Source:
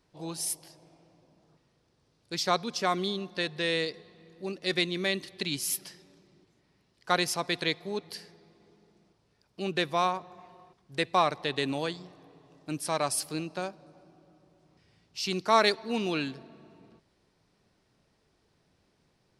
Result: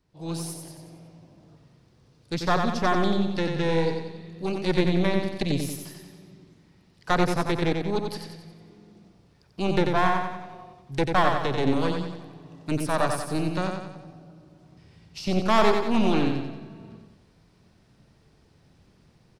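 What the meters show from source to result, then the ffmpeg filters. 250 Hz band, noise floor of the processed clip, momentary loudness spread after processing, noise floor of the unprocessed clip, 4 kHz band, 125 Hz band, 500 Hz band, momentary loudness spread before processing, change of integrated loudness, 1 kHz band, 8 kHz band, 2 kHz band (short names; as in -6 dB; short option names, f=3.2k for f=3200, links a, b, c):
+9.0 dB, -60 dBFS, 19 LU, -71 dBFS, -2.5 dB, +11.5 dB, +5.5 dB, 13 LU, +4.0 dB, +4.0 dB, -5.0 dB, +2.0 dB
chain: -filter_complex "[0:a]bass=f=250:g=8,treble=f=4k:g=-1,acrossover=split=530|1300[a][b][c];[c]acompressor=threshold=-44dB:ratio=5[d];[a][b][d]amix=inputs=3:normalize=0,asoftclip=type=tanh:threshold=-17dB,dynaudnorm=f=190:g=3:m=11dB,aeval=exprs='0.299*(cos(1*acos(clip(val(0)/0.299,-1,1)))-cos(1*PI/2))+0.119*(cos(2*acos(clip(val(0)/0.299,-1,1)))-cos(2*PI/2))':c=same,asplit=2[e][f];[f]aecho=0:1:91|182|273|364|455|546:0.562|0.276|0.135|0.0662|0.0324|0.0159[g];[e][g]amix=inputs=2:normalize=0,volume=-5.5dB"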